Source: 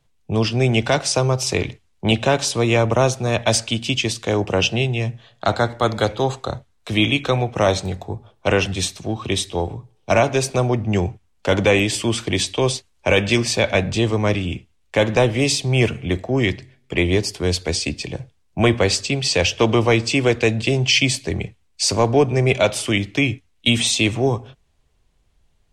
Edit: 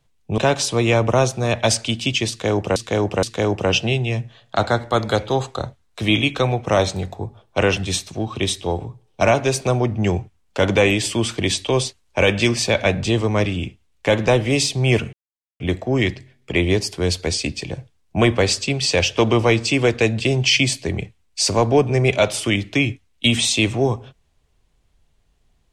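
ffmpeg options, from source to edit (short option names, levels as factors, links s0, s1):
-filter_complex "[0:a]asplit=5[s0][s1][s2][s3][s4];[s0]atrim=end=0.382[s5];[s1]atrim=start=2.208:end=4.592[s6];[s2]atrim=start=4.118:end=4.592[s7];[s3]atrim=start=4.118:end=16.02,asetpts=PTS-STARTPTS,afade=t=out:st=11.898:d=0.004:c=hsin,apad=pad_dur=0.47[s8];[s4]atrim=start=16.02,asetpts=PTS-STARTPTS,afade=t=in:d=0.004:c=hsin[s9];[s5][s6]acrossfade=d=0.004:c1=hsin:c2=hsin[s10];[s10][s7]acrossfade=d=0.004:c1=hsin:c2=hsin[s11];[s8][s9]concat=n=2:v=0:a=1[s12];[s11][s12]acrossfade=d=0.004:c1=hsin:c2=hsin"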